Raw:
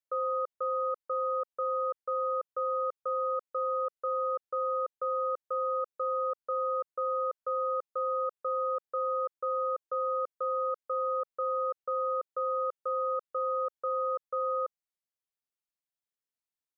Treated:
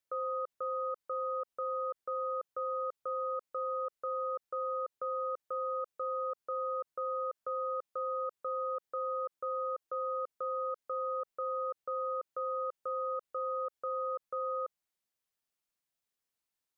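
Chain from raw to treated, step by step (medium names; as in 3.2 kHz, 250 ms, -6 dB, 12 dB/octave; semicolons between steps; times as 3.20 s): peak limiter -33.5 dBFS, peak gain reduction 9 dB; trim +4.5 dB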